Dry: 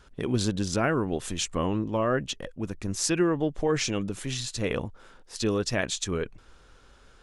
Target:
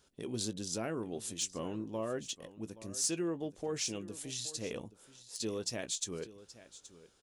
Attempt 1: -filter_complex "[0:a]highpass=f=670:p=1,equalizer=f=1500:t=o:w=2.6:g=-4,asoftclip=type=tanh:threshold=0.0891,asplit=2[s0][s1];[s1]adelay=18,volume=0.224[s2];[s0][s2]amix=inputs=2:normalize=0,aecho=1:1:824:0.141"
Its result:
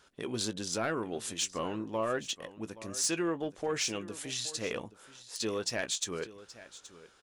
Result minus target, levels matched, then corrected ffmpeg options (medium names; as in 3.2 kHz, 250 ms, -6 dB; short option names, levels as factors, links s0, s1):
2 kHz band +6.0 dB
-filter_complex "[0:a]highpass=f=670:p=1,equalizer=f=1500:t=o:w=2.6:g=-16,asoftclip=type=tanh:threshold=0.0891,asplit=2[s0][s1];[s1]adelay=18,volume=0.224[s2];[s0][s2]amix=inputs=2:normalize=0,aecho=1:1:824:0.141"